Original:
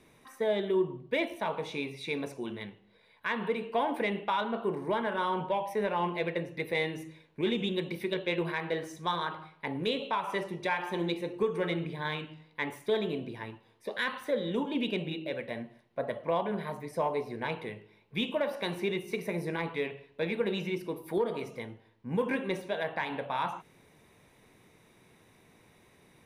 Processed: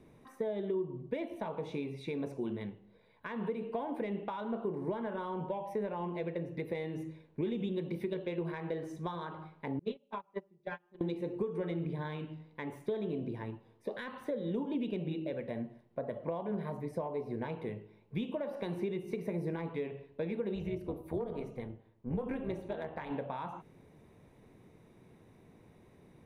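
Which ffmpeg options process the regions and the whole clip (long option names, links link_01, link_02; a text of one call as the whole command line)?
ffmpeg -i in.wav -filter_complex "[0:a]asettb=1/sr,asplit=3[link_01][link_02][link_03];[link_01]atrim=end=9.794[link_04];[link_02]atrim=start=9.79:end=11.01,asetpts=PTS-STARTPTS,afade=type=in:duration=0.004:curve=qsin,afade=type=out:start_time=1.216:duration=0.004:curve=qsin,lowpass=4900,agate=range=-34dB:threshold=-29dB:ratio=16:release=100:detection=peak,aecho=1:1:5:0.98,atrim=end_sample=53802[link_05];[link_03]atrim=start=11.006[link_06];[link_04][link_05]acrossfade=duration=0.004:curve1=hsin:curve2=qsin[link_07];[link_07][link_06]acrossfade=duration=0.004:curve1=qsin:curve2=hsin,asettb=1/sr,asplit=3[link_08][link_09][link_10];[link_08]atrim=end=20.554[link_11];[link_09]atrim=start=20.55:end=23.11,asetpts=PTS-STARTPTS,afade=type=in:duration=0.004:curve=qsin,afade=type=out:start_time=2.556:duration=0.004:curve=qsin,asoftclip=type=hard:threshold=-21dB,bandreject=frequency=5100:width=7.7,tremolo=f=250:d=0.667[link_12];[link_10]atrim=start=23.106[link_13];[link_11][link_12]acrossfade=duration=0.004:curve1=hsin:curve2=qsin[link_14];[link_14][link_13]acrossfade=duration=0.004:curve1=qsin:curve2=hsin,acompressor=threshold=-34dB:ratio=6,tiltshelf=frequency=970:gain=7.5,volume=-3dB" out.wav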